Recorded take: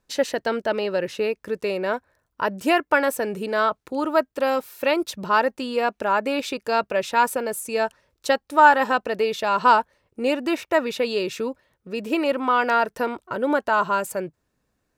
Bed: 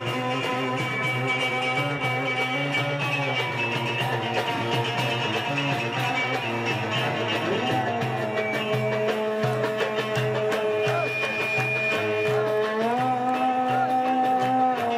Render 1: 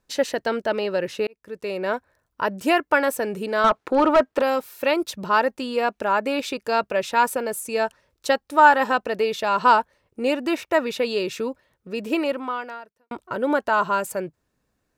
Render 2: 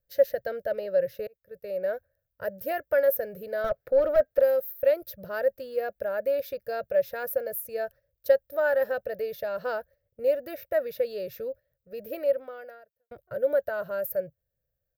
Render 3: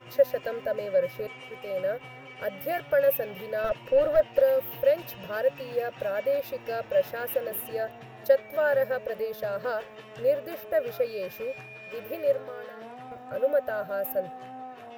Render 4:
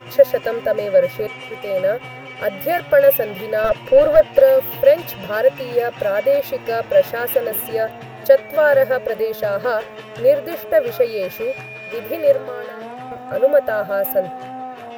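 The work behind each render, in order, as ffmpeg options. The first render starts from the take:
-filter_complex "[0:a]asettb=1/sr,asplit=3[a][b][c];[a]atrim=end=3.644[d];[b]atrim=start=3.64:end=4.42,asetpts=PTS-STARTPTS,afade=t=in:d=0.004:c=qsin,afade=t=out:st=0.776:d=0.004:c=qsin,asplit=2[e][f];[f]highpass=f=720:p=1,volume=22dB,asoftclip=type=tanh:threshold=-6.5dB[g];[e][g]amix=inputs=2:normalize=0,lowpass=f=1.2k:p=1,volume=-6dB[h];[c]atrim=start=4.416[i];[d][h]acrossfade=d=0.004:c1=hsin:c2=qsin[j];[j][i]acrossfade=d=0.004:c1=qsin:c2=hsin,asplit=3[k][l][m];[k]atrim=end=1.27,asetpts=PTS-STARTPTS,afade=t=out:st=1.266:d=0.004:c=hsin[n];[l]atrim=start=1.27:end=13.11,asetpts=PTS-STARTPTS,afade=t=in:d=0.62,afade=t=out:st=10.91:d=0.93:c=qua[o];[m]atrim=start=13.11,asetpts=PTS-STARTPTS,afade=t=in:d=0.004:c=hsin[p];[n][o][p]concat=n=3:v=0:a=1"
-af "agate=range=-7dB:threshold=-37dB:ratio=16:detection=peak,firequalizer=gain_entry='entry(120,0);entry(240,-21);entry(360,-18);entry(550,3);entry(940,-29);entry(1600,-9);entry(2600,-21);entry(5100,-14);entry(7900,-24);entry(14000,11)':delay=0.05:min_phase=1"
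-filter_complex "[1:a]volume=-19.5dB[a];[0:a][a]amix=inputs=2:normalize=0"
-af "volume=10.5dB,alimiter=limit=-1dB:level=0:latency=1"

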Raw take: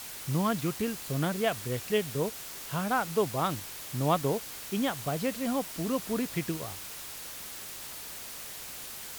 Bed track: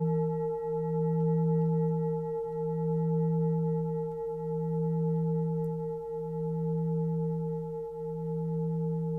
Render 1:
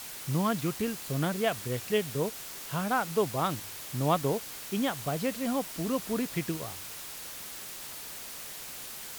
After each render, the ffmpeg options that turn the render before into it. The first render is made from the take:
-af "bandreject=f=50:t=h:w=4,bandreject=f=100:t=h:w=4"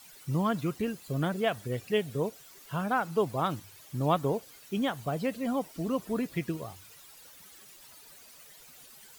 -af "afftdn=nr=14:nf=-42"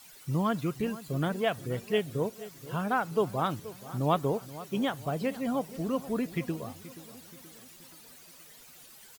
-filter_complex "[0:a]asplit=2[a][b];[b]adelay=477,lowpass=f=2k:p=1,volume=-16dB,asplit=2[c][d];[d]adelay=477,lowpass=f=2k:p=1,volume=0.51,asplit=2[e][f];[f]adelay=477,lowpass=f=2k:p=1,volume=0.51,asplit=2[g][h];[h]adelay=477,lowpass=f=2k:p=1,volume=0.51,asplit=2[i][j];[j]adelay=477,lowpass=f=2k:p=1,volume=0.51[k];[a][c][e][g][i][k]amix=inputs=6:normalize=0"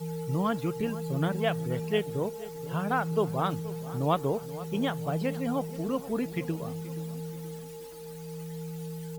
-filter_complex "[1:a]volume=-7dB[a];[0:a][a]amix=inputs=2:normalize=0"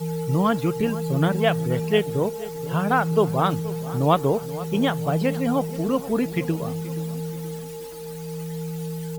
-af "volume=7.5dB"

